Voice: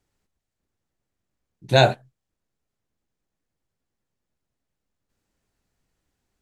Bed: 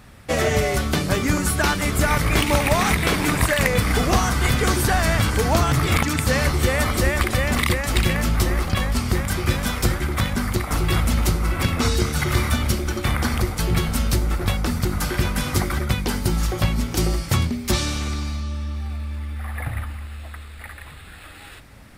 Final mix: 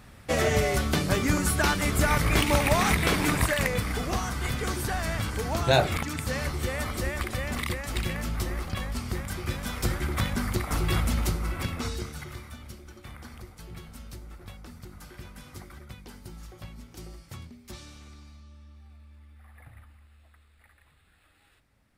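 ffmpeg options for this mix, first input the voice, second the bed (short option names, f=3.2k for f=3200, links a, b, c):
-filter_complex "[0:a]adelay=3950,volume=-5.5dB[a];[1:a]volume=1dB,afade=t=out:st=3.25:d=0.7:silence=0.473151,afade=t=in:st=9.62:d=0.43:silence=0.562341,afade=t=out:st=10.97:d=1.44:silence=0.141254[b];[a][b]amix=inputs=2:normalize=0"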